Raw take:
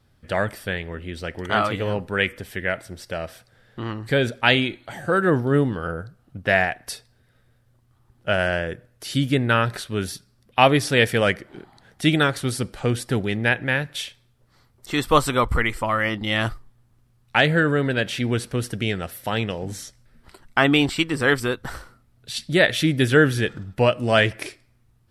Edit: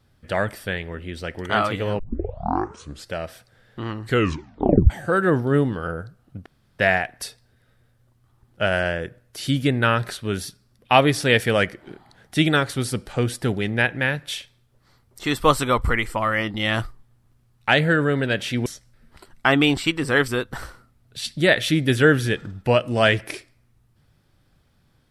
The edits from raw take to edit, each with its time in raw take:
0:01.99: tape start 1.13 s
0:04.06: tape stop 0.84 s
0:06.46: splice in room tone 0.33 s
0:18.33–0:19.78: remove

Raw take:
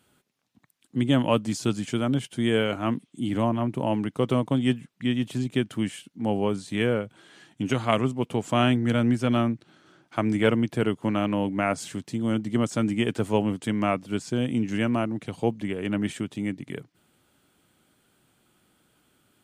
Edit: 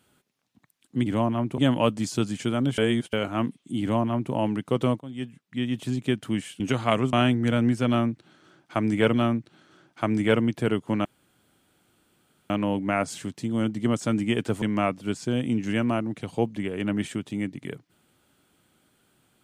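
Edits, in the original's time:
0:02.26–0:02.61: reverse
0:03.29–0:03.81: duplicate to 0:01.06
0:04.48–0:05.37: fade in, from −19.5 dB
0:06.08–0:07.61: remove
0:08.14–0:08.55: remove
0:09.29–0:10.56: repeat, 2 plays
0:11.20: splice in room tone 1.45 s
0:13.32–0:13.67: remove

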